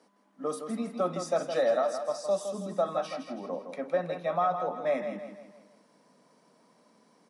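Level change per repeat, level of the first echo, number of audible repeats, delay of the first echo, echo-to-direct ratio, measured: -7.0 dB, -8.0 dB, 4, 0.163 s, -7.0 dB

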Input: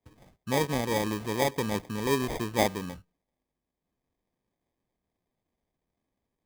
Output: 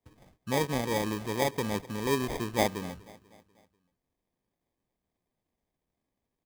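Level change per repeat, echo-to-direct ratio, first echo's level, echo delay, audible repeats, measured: -6.0 dB, -19.0 dB, -20.0 dB, 0.245 s, 3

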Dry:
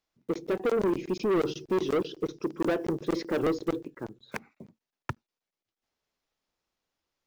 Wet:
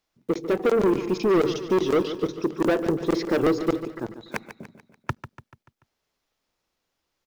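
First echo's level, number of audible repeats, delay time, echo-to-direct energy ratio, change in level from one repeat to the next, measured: -12.0 dB, 4, 0.145 s, -11.0 dB, -6.0 dB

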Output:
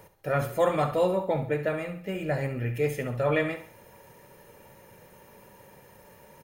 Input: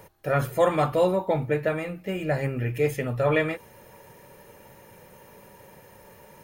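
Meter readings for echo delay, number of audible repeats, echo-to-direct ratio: 68 ms, 3, -10.5 dB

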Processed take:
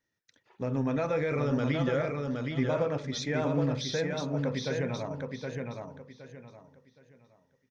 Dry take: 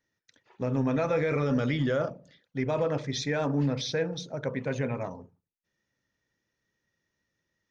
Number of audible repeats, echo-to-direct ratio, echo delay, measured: 3, -3.5 dB, 0.768 s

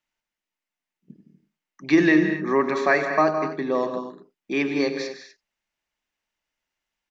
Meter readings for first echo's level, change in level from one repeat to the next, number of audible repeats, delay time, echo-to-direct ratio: -13.5 dB, no steady repeat, 4, 97 ms, -6.5 dB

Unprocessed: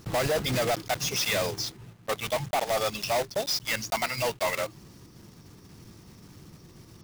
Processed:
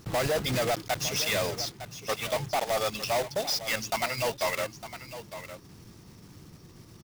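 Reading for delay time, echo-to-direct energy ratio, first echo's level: 0.907 s, -12.5 dB, -12.5 dB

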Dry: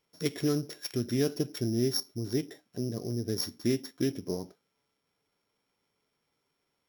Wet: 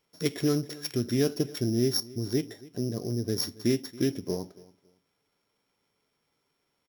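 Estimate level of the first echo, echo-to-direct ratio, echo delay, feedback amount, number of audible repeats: -21.0 dB, -21.0 dB, 0.277 s, 23%, 2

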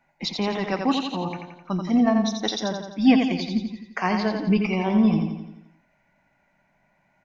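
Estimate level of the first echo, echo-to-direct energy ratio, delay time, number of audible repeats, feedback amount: -5.5 dB, -4.0 dB, 86 ms, 6, 54%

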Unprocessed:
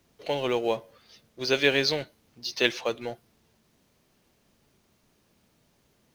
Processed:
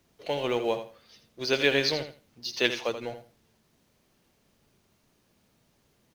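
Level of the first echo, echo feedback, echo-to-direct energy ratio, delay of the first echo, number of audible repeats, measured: -10.0 dB, 19%, -10.0 dB, 82 ms, 2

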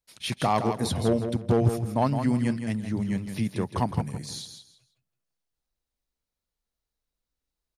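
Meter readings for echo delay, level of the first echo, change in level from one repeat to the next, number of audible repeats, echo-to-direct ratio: 0.164 s, -8.0 dB, -13.0 dB, 3, -8.0 dB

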